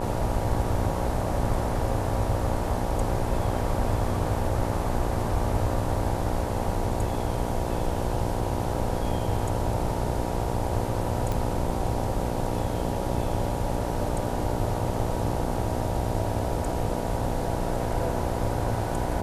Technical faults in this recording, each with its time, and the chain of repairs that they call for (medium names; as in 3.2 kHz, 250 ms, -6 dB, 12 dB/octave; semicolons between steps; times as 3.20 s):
buzz 60 Hz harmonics 16 -31 dBFS
11.32 s: pop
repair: de-click; de-hum 60 Hz, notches 16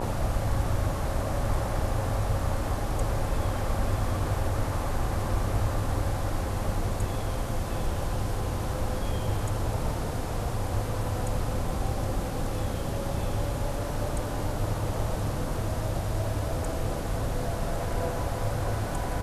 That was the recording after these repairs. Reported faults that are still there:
nothing left